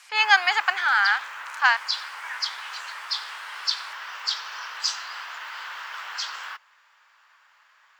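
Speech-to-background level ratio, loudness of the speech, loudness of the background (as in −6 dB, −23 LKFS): 10.0 dB, −21.0 LKFS, −31.0 LKFS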